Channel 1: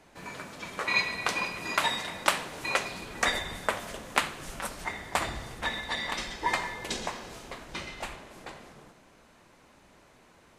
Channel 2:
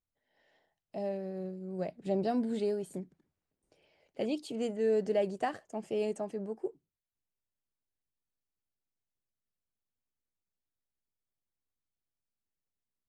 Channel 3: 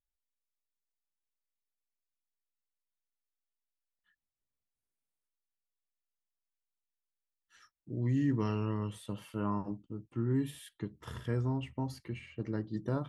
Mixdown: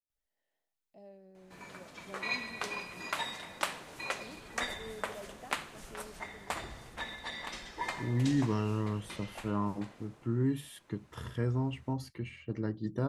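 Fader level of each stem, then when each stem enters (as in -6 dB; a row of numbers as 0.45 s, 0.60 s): -8.5 dB, -18.0 dB, +1.0 dB; 1.35 s, 0.00 s, 0.10 s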